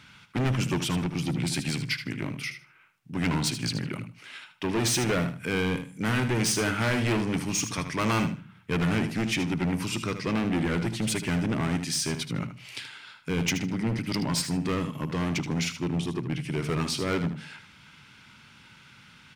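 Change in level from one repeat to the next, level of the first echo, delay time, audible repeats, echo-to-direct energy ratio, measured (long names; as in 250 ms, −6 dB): −14.0 dB, −10.0 dB, 77 ms, 2, −10.0 dB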